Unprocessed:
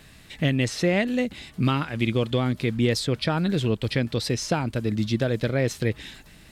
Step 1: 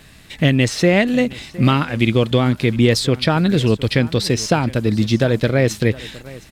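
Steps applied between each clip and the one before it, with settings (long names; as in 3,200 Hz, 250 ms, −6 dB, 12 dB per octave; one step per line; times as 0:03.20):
single-tap delay 713 ms −19 dB
in parallel at −6 dB: dead-zone distortion −44 dBFS
on the sum: level +4.5 dB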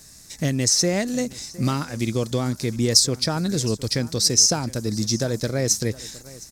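high shelf with overshoot 4,200 Hz +12 dB, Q 3
level −8 dB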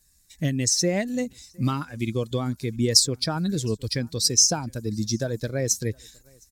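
spectral dynamics exaggerated over time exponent 1.5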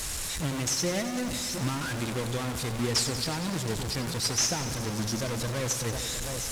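linear delta modulator 64 kbit/s, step −20.5 dBFS
feedback echo at a low word length 93 ms, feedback 80%, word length 7 bits, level −11.5 dB
level −6.5 dB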